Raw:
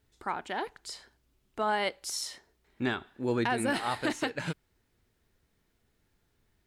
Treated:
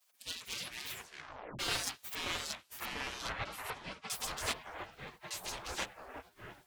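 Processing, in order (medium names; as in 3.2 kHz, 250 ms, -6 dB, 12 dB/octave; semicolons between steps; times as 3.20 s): comb filter that takes the minimum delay 5.8 ms; spectral gate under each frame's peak -25 dB weak; 2.15–4.10 s: low-pass 1.7 kHz 12 dB/octave; ever faster or slower copies 143 ms, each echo -4 st, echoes 2; 0.88 s: tape stop 0.71 s; trim +11.5 dB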